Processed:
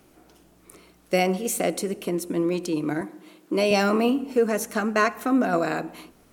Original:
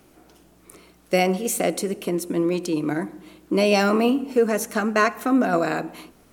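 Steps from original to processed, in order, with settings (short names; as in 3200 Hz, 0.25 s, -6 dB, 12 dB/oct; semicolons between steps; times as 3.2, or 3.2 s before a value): 3.01–3.71 HPF 220 Hz 12 dB/oct; gain -2 dB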